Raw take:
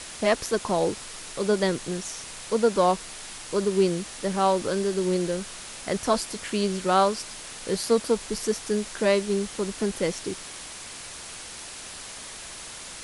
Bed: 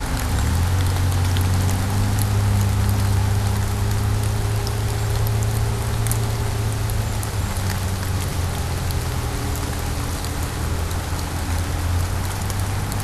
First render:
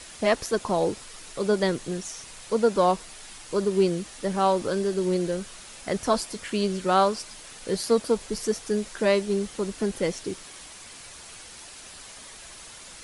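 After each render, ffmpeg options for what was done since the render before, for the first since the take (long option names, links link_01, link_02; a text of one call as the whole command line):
ffmpeg -i in.wav -af "afftdn=noise_reduction=6:noise_floor=-40" out.wav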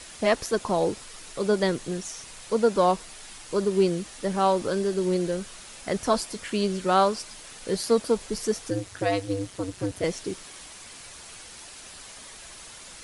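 ffmpeg -i in.wav -filter_complex "[0:a]asettb=1/sr,asplit=3[link_01][link_02][link_03];[link_01]atrim=end=8.704[link_04];[link_02]atrim=start=8.7:end=10.04,asetpts=PTS-STARTPTS,afade=type=in:duration=0.004:curve=qsin,afade=type=out:start_time=1.336:duration=0.004:curve=qsin,aeval=exprs='val(0)*sin(2*PI*95*n/s)':channel_layout=same[link_05];[link_03]atrim=start=10.036[link_06];[link_04][link_05]acrossfade=duration=0.004:curve1=hsin:curve2=qsin[link_07];[link_07][link_06]acrossfade=duration=0.004:curve1=qsin:curve2=hsin" out.wav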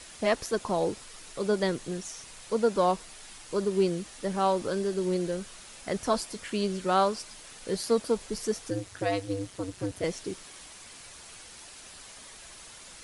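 ffmpeg -i in.wav -af "volume=-3.5dB" out.wav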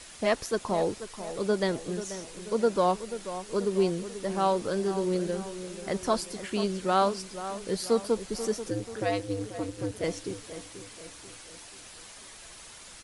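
ffmpeg -i in.wav -filter_complex "[0:a]asplit=2[link_01][link_02];[link_02]adelay=486,lowpass=frequency=2000:poles=1,volume=-11.5dB,asplit=2[link_03][link_04];[link_04]adelay=486,lowpass=frequency=2000:poles=1,volume=0.5,asplit=2[link_05][link_06];[link_06]adelay=486,lowpass=frequency=2000:poles=1,volume=0.5,asplit=2[link_07][link_08];[link_08]adelay=486,lowpass=frequency=2000:poles=1,volume=0.5,asplit=2[link_09][link_10];[link_10]adelay=486,lowpass=frequency=2000:poles=1,volume=0.5[link_11];[link_01][link_03][link_05][link_07][link_09][link_11]amix=inputs=6:normalize=0" out.wav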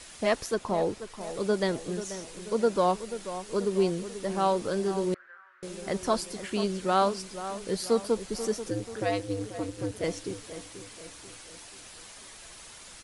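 ffmpeg -i in.wav -filter_complex "[0:a]asettb=1/sr,asplit=3[link_01][link_02][link_03];[link_01]atrim=end=0.544[link_04];[link_02]atrim=start=0.54:end=1.21,asetpts=PTS-STARTPTS,afade=type=in:duration=0.004:curve=qsin,afade=type=out:start_time=0.666:duration=0.004:curve=qsin,highshelf=frequency=4000:gain=-6[link_05];[link_03]atrim=start=1.206[link_06];[link_04][link_05]acrossfade=duration=0.004:curve1=hsin:curve2=qsin[link_07];[link_07][link_06]acrossfade=duration=0.004:curve1=qsin:curve2=hsin,asettb=1/sr,asplit=3[link_08][link_09][link_10];[link_08]atrim=end=5.144[link_11];[link_09]atrim=start=5.14:end=5.63,asetpts=PTS-STARTPTS,afade=type=in:duration=0.004:curve=qsin,afade=type=out:start_time=0.486:duration=0.004:curve=qsin,asuperpass=centerf=1500:order=4:qfactor=2.7[link_12];[link_10]atrim=start=5.626[link_13];[link_11][link_12]acrossfade=duration=0.004:curve1=hsin:curve2=qsin[link_14];[link_14][link_13]acrossfade=duration=0.004:curve1=qsin:curve2=hsin" out.wav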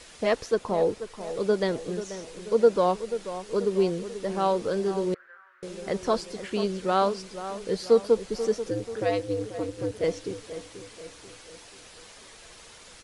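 ffmpeg -i in.wav -filter_complex "[0:a]acrossover=split=6900[link_01][link_02];[link_02]acompressor=threshold=-57dB:ratio=4:attack=1:release=60[link_03];[link_01][link_03]amix=inputs=2:normalize=0,equalizer=frequency=470:width_type=o:width=0.33:gain=7" out.wav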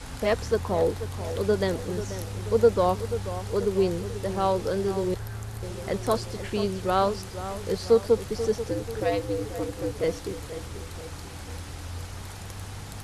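ffmpeg -i in.wav -i bed.wav -filter_complex "[1:a]volume=-15.5dB[link_01];[0:a][link_01]amix=inputs=2:normalize=0" out.wav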